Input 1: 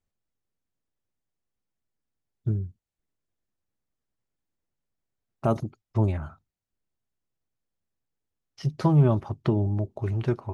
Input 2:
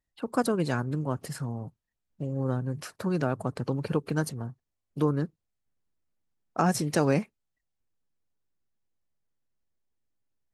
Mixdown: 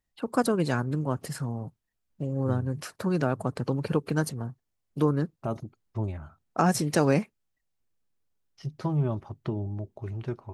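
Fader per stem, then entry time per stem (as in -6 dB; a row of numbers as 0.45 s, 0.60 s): -7.5 dB, +1.5 dB; 0.00 s, 0.00 s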